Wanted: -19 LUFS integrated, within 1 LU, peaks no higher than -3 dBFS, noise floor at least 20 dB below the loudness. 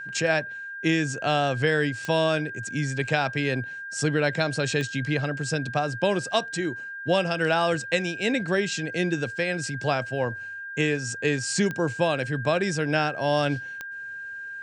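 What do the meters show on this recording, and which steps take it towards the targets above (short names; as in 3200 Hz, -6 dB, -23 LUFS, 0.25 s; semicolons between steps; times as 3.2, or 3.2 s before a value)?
clicks 4; steady tone 1600 Hz; tone level -34 dBFS; loudness -26.0 LUFS; peak -6.5 dBFS; loudness target -19.0 LUFS
-> de-click; notch 1600 Hz, Q 30; gain +7 dB; limiter -3 dBFS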